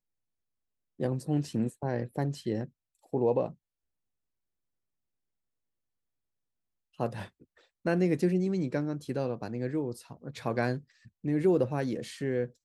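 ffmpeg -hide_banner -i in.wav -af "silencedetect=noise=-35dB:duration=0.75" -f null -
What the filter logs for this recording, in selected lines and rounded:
silence_start: 0.00
silence_end: 1.00 | silence_duration: 1.00
silence_start: 3.48
silence_end: 7.00 | silence_duration: 3.52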